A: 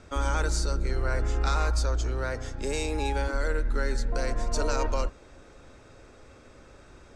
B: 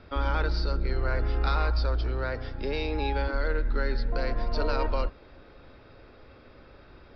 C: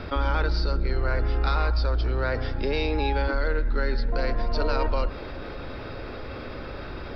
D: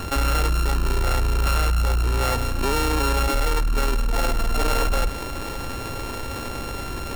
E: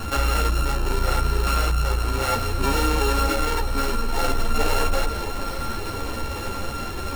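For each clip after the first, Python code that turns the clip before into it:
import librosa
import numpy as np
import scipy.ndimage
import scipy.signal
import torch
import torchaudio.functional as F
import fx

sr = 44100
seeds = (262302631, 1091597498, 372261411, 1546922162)

y1 = scipy.signal.sosfilt(scipy.signal.butter(16, 5100.0, 'lowpass', fs=sr, output='sos'), x)
y2 = fx.env_flatten(y1, sr, amount_pct=50)
y2 = y2 * librosa.db_to_amplitude(1.5)
y3 = np.r_[np.sort(y2[:len(y2) // 32 * 32].reshape(-1, 32), axis=1).ravel(), y2[len(y2) // 32 * 32:]]
y3 = 10.0 ** (-21.0 / 20.0) * np.tanh(y3 / 10.0 ** (-21.0 / 20.0))
y3 = y3 * librosa.db_to_amplitude(6.0)
y4 = fx.echo_alternate(y3, sr, ms=454, hz=1100.0, feedback_pct=68, wet_db=-9.5)
y4 = fx.ensemble(y4, sr)
y4 = y4 * librosa.db_to_amplitude(3.0)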